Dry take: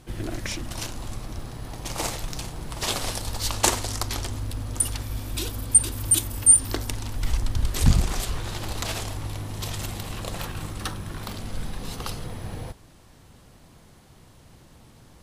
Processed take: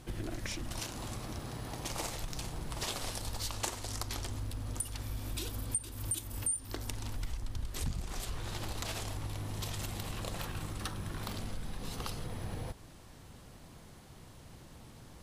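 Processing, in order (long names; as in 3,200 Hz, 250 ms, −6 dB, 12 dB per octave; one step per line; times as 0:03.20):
0:00.80–0:01.92: high-pass filter 97 Hz 6 dB per octave
downward compressor 4 to 1, threshold −34 dBFS, peak gain reduction 19.5 dB
level −1.5 dB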